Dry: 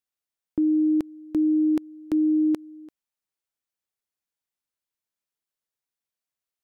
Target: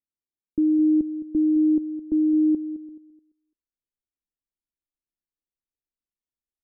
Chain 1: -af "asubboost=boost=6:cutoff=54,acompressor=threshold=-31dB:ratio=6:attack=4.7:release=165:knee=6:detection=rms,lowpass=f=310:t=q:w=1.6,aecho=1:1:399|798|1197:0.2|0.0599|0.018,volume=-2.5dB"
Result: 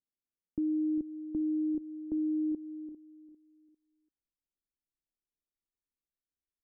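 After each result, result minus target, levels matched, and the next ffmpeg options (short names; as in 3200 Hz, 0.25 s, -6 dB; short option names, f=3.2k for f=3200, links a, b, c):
echo 0.185 s late; compressor: peak gain reduction +11 dB
-af "asubboost=boost=6:cutoff=54,acompressor=threshold=-31dB:ratio=6:attack=4.7:release=165:knee=6:detection=rms,lowpass=f=310:t=q:w=1.6,aecho=1:1:214|428|642:0.2|0.0599|0.018,volume=-2.5dB"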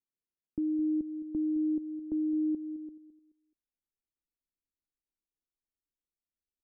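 compressor: peak gain reduction +11 dB
-af "asubboost=boost=6:cutoff=54,lowpass=f=310:t=q:w=1.6,aecho=1:1:214|428|642:0.2|0.0599|0.018,volume=-2.5dB"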